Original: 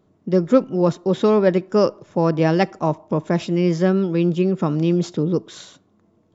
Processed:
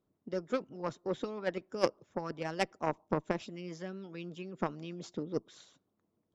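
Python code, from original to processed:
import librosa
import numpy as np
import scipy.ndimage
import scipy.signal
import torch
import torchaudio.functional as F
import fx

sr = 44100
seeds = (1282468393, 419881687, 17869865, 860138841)

y = fx.hpss(x, sr, part='harmonic', gain_db=-12)
y = fx.cheby_harmonics(y, sr, harmonics=(3,), levels_db=(-13,), full_scale_db=-7.0)
y = y * 10.0 ** (-4.5 / 20.0)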